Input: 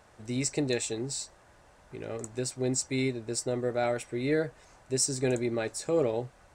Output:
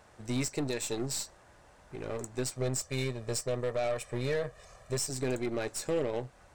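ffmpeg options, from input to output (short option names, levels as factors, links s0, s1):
-filter_complex "[0:a]asettb=1/sr,asplit=3[s0][s1][s2];[s0]atrim=end=2.564[s3];[s1]atrim=start=2.56:end=5.1,asetpts=PTS-STARTPTS,afade=t=in:d=0.004:c=qsin,afade=t=out:st=2.536:d=0.004:c=qsin,aecho=1:1:1.7:0.81,atrim=end_sample=112014[s4];[s2]atrim=start=5.096[s5];[s3][s4]acrossfade=d=0.004:c1=hsin:c2=qsin[s6];[s6][s5]acrossfade=d=0.004:c1=qsin:c2=hsin,alimiter=limit=0.0708:level=0:latency=1:release=226,aeval=exprs='0.0708*(cos(1*acos(clip(val(0)/0.0708,-1,1)))-cos(1*PI/2))+0.00708*(cos(6*acos(clip(val(0)/0.0708,-1,1)))-cos(6*PI/2))':c=same"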